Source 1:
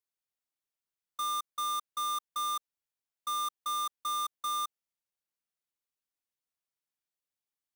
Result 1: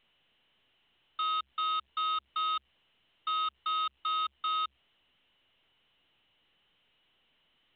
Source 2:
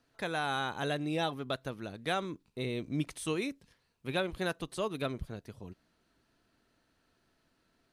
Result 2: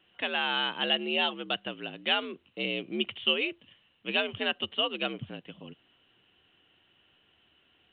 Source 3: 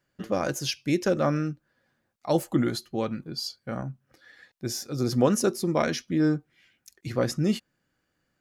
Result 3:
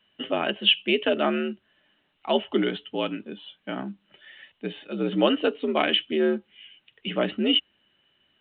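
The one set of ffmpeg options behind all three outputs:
-af "lowpass=f=2900:t=q:w=14,afreqshift=66" -ar 8000 -c:a pcm_alaw

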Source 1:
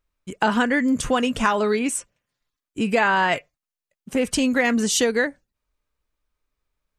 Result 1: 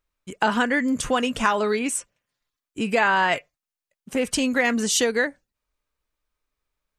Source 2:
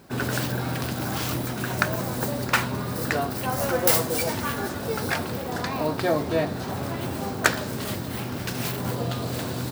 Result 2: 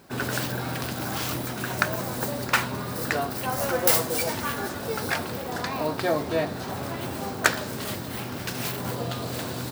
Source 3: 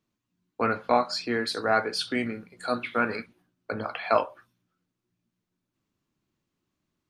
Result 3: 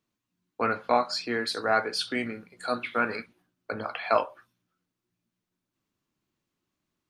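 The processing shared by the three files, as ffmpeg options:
-af "lowshelf=f=350:g=-4.5"

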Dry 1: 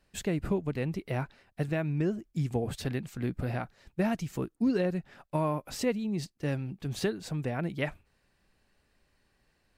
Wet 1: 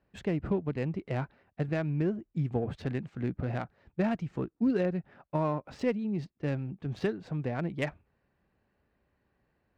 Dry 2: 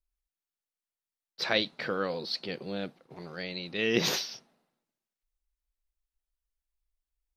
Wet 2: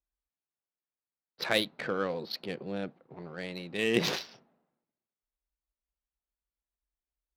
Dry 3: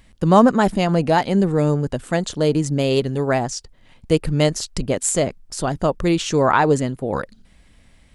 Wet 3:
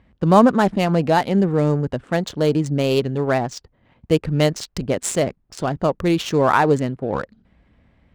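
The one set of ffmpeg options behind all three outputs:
-af "highpass=56,adynamicsmooth=sensitivity=3.5:basefreq=1900"

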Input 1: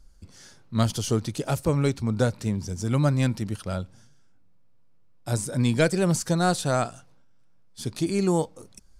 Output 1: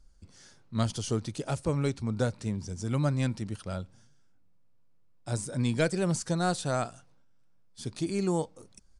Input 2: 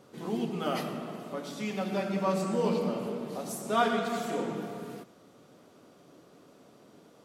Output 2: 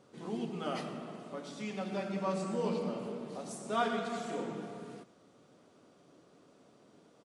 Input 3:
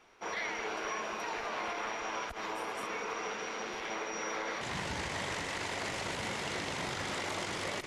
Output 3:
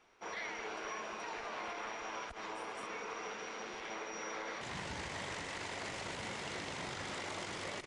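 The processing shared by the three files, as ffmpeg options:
-af "aresample=22050,aresample=44100,volume=0.531"

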